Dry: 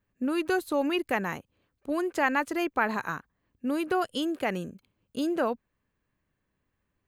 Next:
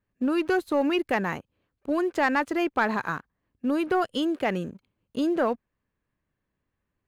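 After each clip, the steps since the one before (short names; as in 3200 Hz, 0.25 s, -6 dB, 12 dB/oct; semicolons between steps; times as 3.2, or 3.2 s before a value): high shelf 6000 Hz -11 dB; sample leveller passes 1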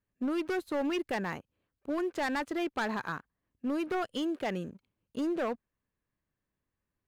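hard clip -21 dBFS, distortion -14 dB; gain -6 dB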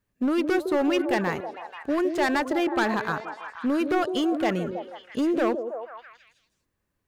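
delay with a stepping band-pass 0.161 s, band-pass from 410 Hz, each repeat 0.7 oct, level -4 dB; gain +7.5 dB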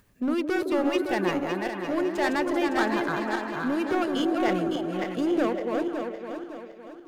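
regenerating reverse delay 0.28 s, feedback 62%, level -3.5 dB; upward compressor, threshold -45 dBFS; gain -3 dB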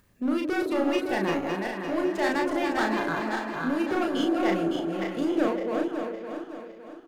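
doubler 36 ms -3.5 dB; gain -2 dB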